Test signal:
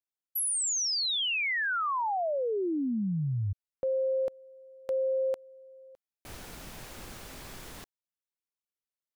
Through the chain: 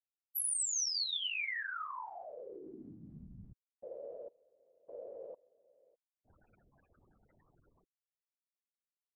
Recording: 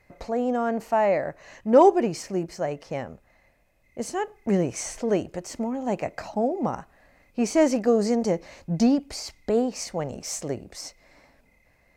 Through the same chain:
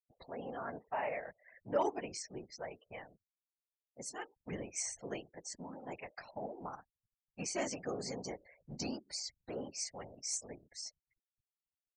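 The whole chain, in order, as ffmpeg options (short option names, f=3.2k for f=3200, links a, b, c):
-af "afftfilt=real='re*gte(hypot(re,im),0.0126)':imag='im*gte(hypot(re,im),0.0126)':win_size=1024:overlap=0.75,tiltshelf=f=1.1k:g=-8.5,afftfilt=real='hypot(re,im)*cos(2*PI*random(0))':imag='hypot(re,im)*sin(2*PI*random(1))':win_size=512:overlap=0.75,volume=-7.5dB"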